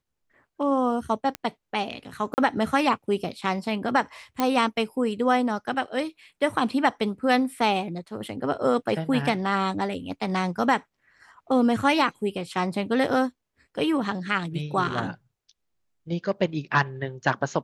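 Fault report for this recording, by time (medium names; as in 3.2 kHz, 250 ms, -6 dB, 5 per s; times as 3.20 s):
1.35 s: pop -15 dBFS
2.34–2.38 s: dropout 39 ms
4.40 s: pop -10 dBFS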